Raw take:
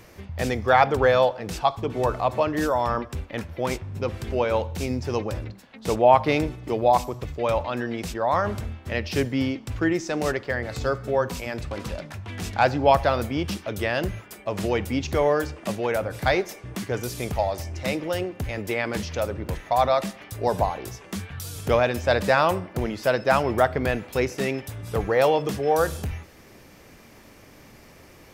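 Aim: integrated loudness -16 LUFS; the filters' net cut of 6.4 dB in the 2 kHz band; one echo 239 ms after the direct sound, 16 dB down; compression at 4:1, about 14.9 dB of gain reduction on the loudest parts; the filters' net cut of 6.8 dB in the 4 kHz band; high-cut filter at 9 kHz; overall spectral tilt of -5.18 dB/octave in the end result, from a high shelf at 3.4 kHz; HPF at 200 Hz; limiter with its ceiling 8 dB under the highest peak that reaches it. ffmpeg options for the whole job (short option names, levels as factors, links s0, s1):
-af "highpass=200,lowpass=9000,equalizer=f=2000:t=o:g=-6.5,highshelf=f=3400:g=-5,equalizer=f=4000:t=o:g=-3,acompressor=threshold=0.0282:ratio=4,alimiter=level_in=1.33:limit=0.0631:level=0:latency=1,volume=0.75,aecho=1:1:239:0.158,volume=11.9"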